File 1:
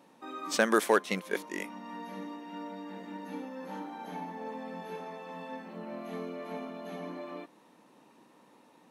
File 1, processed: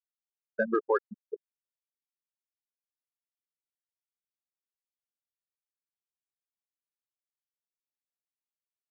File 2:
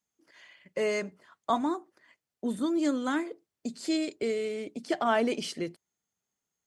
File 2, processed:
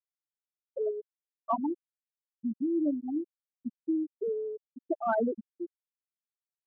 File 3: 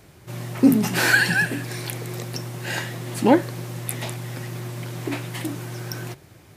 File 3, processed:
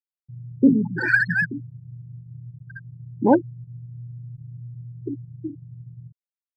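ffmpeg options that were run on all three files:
-filter_complex "[0:a]afftfilt=real='re*gte(hypot(re,im),0.251)':imag='im*gte(hypot(re,im),0.251)':win_size=1024:overlap=0.75,asplit=2[s0][s1];[s1]adynamicsmooth=sensitivity=4.5:basefreq=5000,volume=1.41[s2];[s0][s2]amix=inputs=2:normalize=0,volume=0.398"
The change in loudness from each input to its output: +5.0 LU, -2.5 LU, +2.5 LU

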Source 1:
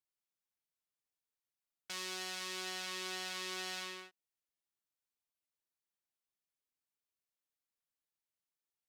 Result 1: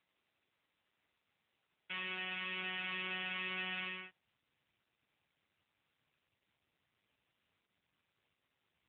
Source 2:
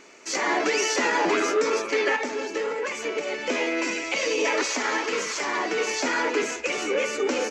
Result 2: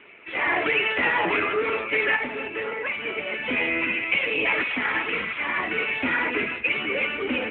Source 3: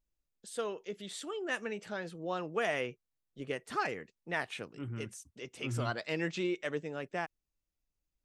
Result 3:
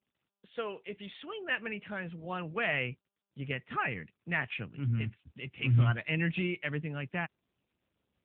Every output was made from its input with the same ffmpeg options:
-af "lowpass=f=2600:t=q:w=2.4,asubboost=boost=9:cutoff=140" -ar 8000 -c:a libopencore_amrnb -b:a 10200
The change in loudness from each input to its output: +1.0 LU, +1.0 LU, +4.0 LU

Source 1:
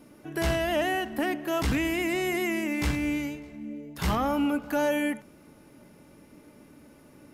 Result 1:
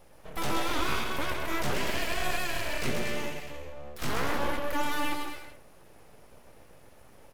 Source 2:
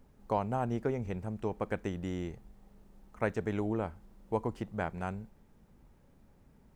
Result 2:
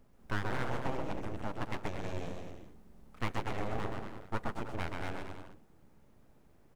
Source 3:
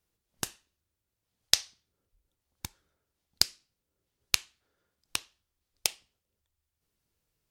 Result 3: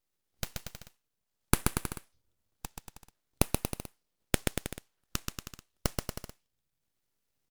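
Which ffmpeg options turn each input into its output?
-af "aecho=1:1:130|234|317.2|383.8|437:0.631|0.398|0.251|0.158|0.1,aeval=exprs='abs(val(0))':c=same,volume=0.841"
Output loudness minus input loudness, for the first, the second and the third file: -4.0 LU, -4.0 LU, -5.0 LU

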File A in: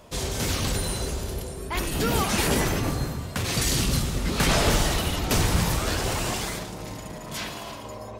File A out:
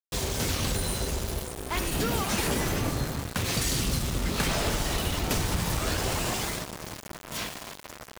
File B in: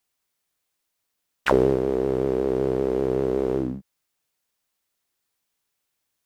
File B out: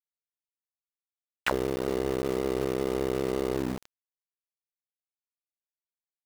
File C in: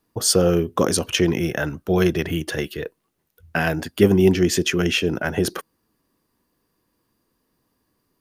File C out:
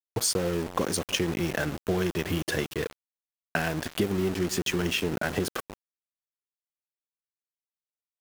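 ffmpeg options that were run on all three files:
-filter_complex "[0:a]asplit=2[s0][s1];[s1]adelay=309,lowpass=f=1400:p=1,volume=0.119,asplit=2[s2][s3];[s3]adelay=309,lowpass=f=1400:p=1,volume=0.5,asplit=2[s4][s5];[s5]adelay=309,lowpass=f=1400:p=1,volume=0.5,asplit=2[s6][s7];[s7]adelay=309,lowpass=f=1400:p=1,volume=0.5[s8];[s0][s2][s4][s6][s8]amix=inputs=5:normalize=0,acompressor=threshold=0.0708:ratio=12,aeval=exprs='val(0)*gte(abs(val(0)),0.0266)':c=same"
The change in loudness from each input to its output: -3.0 LU, -6.5 LU, -8.5 LU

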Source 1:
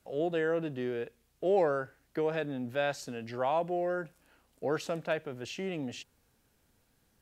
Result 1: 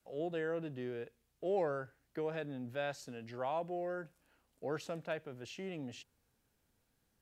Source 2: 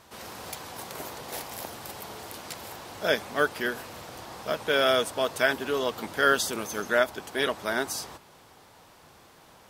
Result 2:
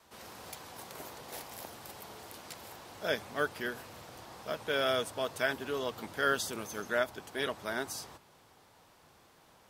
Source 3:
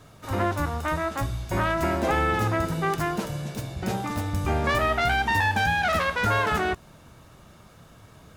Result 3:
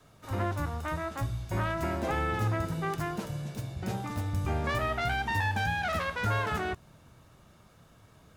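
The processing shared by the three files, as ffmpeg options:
-af "adynamicequalizer=threshold=0.00631:dfrequency=110:dqfactor=1.4:tfrequency=110:tqfactor=1.4:attack=5:release=100:ratio=0.375:range=3:mode=boostabove:tftype=bell,volume=0.422"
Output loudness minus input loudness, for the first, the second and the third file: -7.5 LU, -7.5 LU, -6.5 LU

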